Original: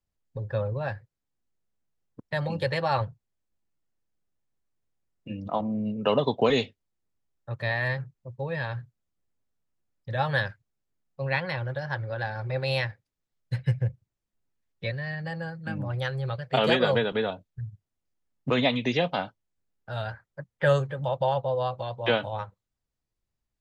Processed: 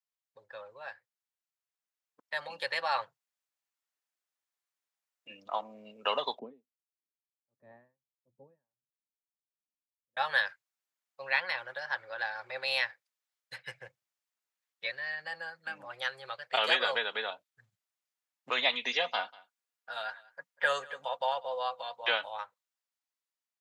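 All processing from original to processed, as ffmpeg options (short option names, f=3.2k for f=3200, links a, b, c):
-filter_complex "[0:a]asettb=1/sr,asplit=3[a][b][c];[a]atrim=end=6.394[d];[b]atrim=start=6.39:end=10.17,asetpts=PTS-STARTPTS,afade=t=in:d=0.004:c=qsin,afade=t=out:st=3.776:d=0.004:c=qsin,lowpass=f=250:t=q:w=2.8,aeval=exprs='val(0)*pow(10,-39*(0.5-0.5*cos(2*PI*1.5*n/s))/20)':c=same[e];[c]atrim=start=10.166[f];[d][e]acrossfade=d=0.004:c1=hsin:c2=qsin[g];[g][f]acrossfade=d=0.004:c1=qsin:c2=hsin,asettb=1/sr,asplit=3[h][i][j];[h]atrim=end=18.734[k];[i]atrim=start=18.73:end=22.04,asetpts=PTS-STARTPTS,afade=t=in:d=0.004:c=qsin,afade=t=out:st=3.306:d=0.004:c=qsin,aecho=1:1:4.2:0.43,atrim=end_sample=145971,aecho=1:1:192:0.0708,atrim=end_sample=145971[l];[j]atrim=start=22.036[m];[k][l]acrossfade=d=0.004:c1=hsin:c2=qsin[n];[n][m]acrossfade=d=0.004:c1=qsin:c2=hsin,highpass=1k,dynaudnorm=f=870:g=5:m=7dB,volume=-6dB"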